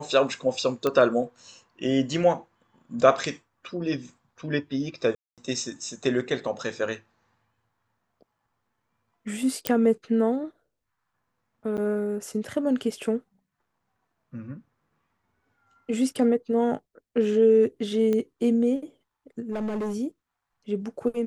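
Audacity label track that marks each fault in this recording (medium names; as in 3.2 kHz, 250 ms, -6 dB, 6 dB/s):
0.870000	0.870000	pop -12 dBFS
5.150000	5.380000	dropout 227 ms
9.670000	9.670000	pop -6 dBFS
11.770000	11.780000	dropout 8.5 ms
18.130000	18.130000	pop -16 dBFS
19.510000	19.960000	clipped -26 dBFS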